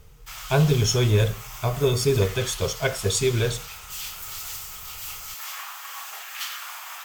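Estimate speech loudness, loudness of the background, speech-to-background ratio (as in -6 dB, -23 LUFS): -23.0 LUFS, -35.0 LUFS, 12.0 dB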